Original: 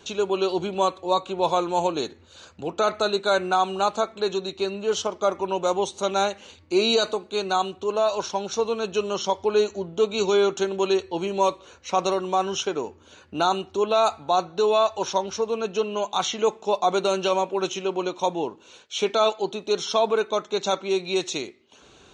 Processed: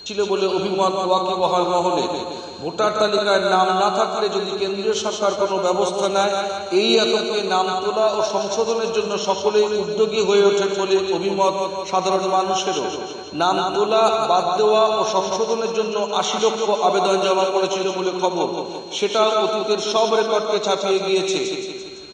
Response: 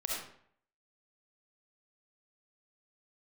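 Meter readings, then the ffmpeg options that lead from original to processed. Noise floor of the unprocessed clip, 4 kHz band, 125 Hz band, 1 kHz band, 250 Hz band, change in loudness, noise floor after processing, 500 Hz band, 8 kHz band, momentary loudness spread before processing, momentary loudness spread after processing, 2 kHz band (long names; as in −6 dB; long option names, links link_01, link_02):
−53 dBFS, +5.5 dB, +5.0 dB, +5.0 dB, +5.0 dB, +5.0 dB, −32 dBFS, +5.0 dB, +5.0 dB, 7 LU, 6 LU, +5.0 dB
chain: -filter_complex "[0:a]aecho=1:1:169|338|507|676|845|1014|1183:0.531|0.292|0.161|0.0883|0.0486|0.0267|0.0147,aeval=exprs='val(0)+0.01*sin(2*PI*4200*n/s)':channel_layout=same,asplit=2[link_01][link_02];[1:a]atrim=start_sample=2205,adelay=70[link_03];[link_02][link_03]afir=irnorm=-1:irlink=0,volume=-11dB[link_04];[link_01][link_04]amix=inputs=2:normalize=0,volume=3dB"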